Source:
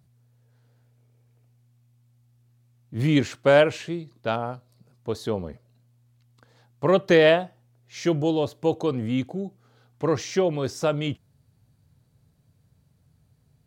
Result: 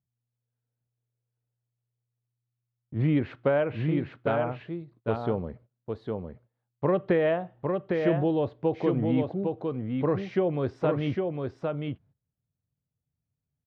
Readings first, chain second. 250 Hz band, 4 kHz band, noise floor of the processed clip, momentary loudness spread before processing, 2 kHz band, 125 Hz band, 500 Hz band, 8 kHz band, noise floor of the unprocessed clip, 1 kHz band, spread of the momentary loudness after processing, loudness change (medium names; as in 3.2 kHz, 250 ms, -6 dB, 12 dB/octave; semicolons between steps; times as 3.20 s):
-1.5 dB, -14.0 dB, under -85 dBFS, 19 LU, -8.5 dB, -0.5 dB, -4.0 dB, under -25 dB, -64 dBFS, -4.0 dB, 12 LU, -4.5 dB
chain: low-pass that closes with the level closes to 2.9 kHz, closed at -16 dBFS; gate -50 dBFS, range -24 dB; compression, threshold -19 dBFS, peak gain reduction 7.5 dB; distance through air 480 m; on a send: delay 806 ms -4 dB